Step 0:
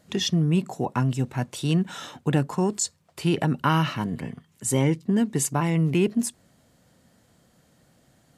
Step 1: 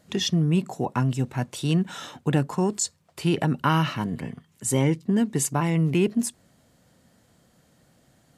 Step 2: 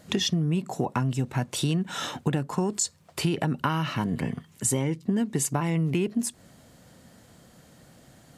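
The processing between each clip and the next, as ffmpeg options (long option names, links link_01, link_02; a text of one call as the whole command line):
ffmpeg -i in.wav -af anull out.wav
ffmpeg -i in.wav -af "acompressor=threshold=-30dB:ratio=6,volume=7dB" out.wav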